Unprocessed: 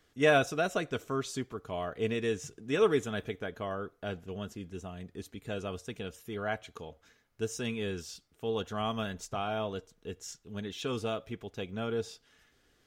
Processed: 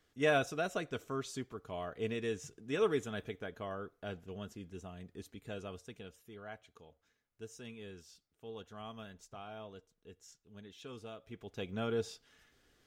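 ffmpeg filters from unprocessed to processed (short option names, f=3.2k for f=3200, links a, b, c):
-af "volume=7dB,afade=t=out:st=5.31:d=1.1:silence=0.375837,afade=t=in:st=11.19:d=0.52:silence=0.237137"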